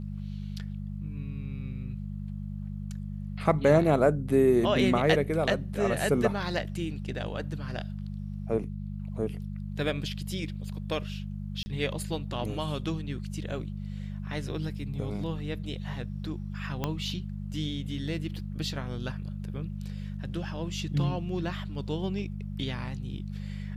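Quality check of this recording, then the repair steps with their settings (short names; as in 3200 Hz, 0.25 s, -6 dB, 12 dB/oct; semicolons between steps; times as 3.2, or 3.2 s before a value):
hum 50 Hz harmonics 4 -36 dBFS
11.63–11.66 gap 30 ms
16.84 pop -15 dBFS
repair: de-click; de-hum 50 Hz, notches 4; interpolate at 11.63, 30 ms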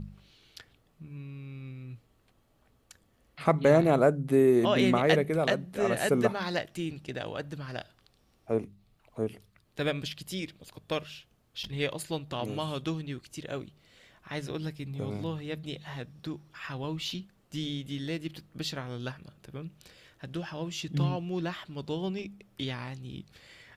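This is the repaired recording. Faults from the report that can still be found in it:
16.84 pop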